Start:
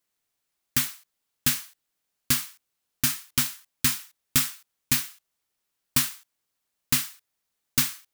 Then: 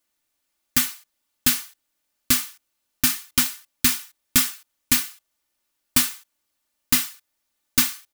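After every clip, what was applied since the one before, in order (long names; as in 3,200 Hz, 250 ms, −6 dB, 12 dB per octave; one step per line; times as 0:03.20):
comb filter 3.4 ms, depth 56%
level +3 dB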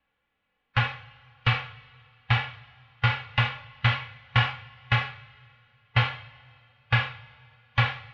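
single-sideband voice off tune −370 Hz 180–3,300 Hz
coupled-rooms reverb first 0.5 s, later 2.6 s, from −18 dB, DRR 11.5 dB
harmonic and percussive parts rebalanced harmonic +9 dB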